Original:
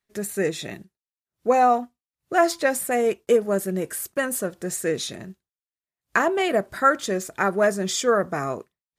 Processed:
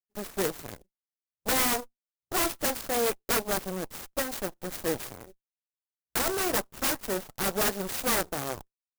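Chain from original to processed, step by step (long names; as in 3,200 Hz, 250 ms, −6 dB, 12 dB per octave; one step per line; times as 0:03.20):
wrap-around overflow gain 14.5 dB
harmonic generator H 6 −16 dB, 7 −16 dB, 8 −11 dB, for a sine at −14.5 dBFS
converter with an unsteady clock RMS 0.091 ms
level −6 dB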